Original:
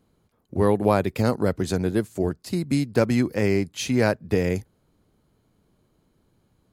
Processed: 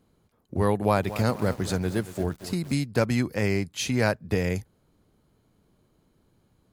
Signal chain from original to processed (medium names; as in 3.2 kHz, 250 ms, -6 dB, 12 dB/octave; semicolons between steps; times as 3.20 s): dynamic bell 340 Hz, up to -6 dB, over -32 dBFS, Q 0.87; 0.74–2.74 s: bit-crushed delay 230 ms, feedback 55%, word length 6-bit, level -13 dB